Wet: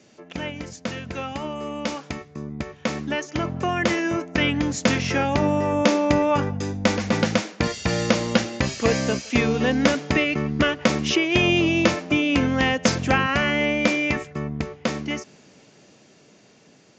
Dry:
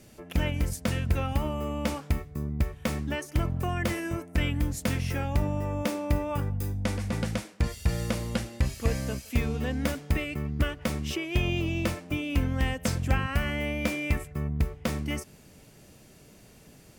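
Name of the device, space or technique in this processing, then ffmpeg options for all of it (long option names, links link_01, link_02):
Bluetooth headset: -filter_complex "[0:a]asettb=1/sr,asplit=3[link_01][link_02][link_03];[link_01]atrim=end=1.144[link_04];[link_02]atrim=start=1.14:end=2.36,asetpts=PTS-STARTPTS,afade=type=in:duration=0.004:curve=qsin,afade=type=out:start_time=1.216:duration=0.004:curve=qsin,highshelf=frequency=2500:gain=4[link_05];[link_03]atrim=start=2.356[link_06];[link_04][link_05]acrossfade=duration=0.004:curve1=hsin:curve2=qsin[link_07];[link_07][link_06]acrossfade=duration=0.004:curve1=qsin:curve2=hsin,highpass=200,dynaudnorm=framelen=670:gausssize=11:maxgain=13dB,aresample=16000,aresample=44100,volume=1.5dB" -ar 16000 -c:a sbc -b:a 64k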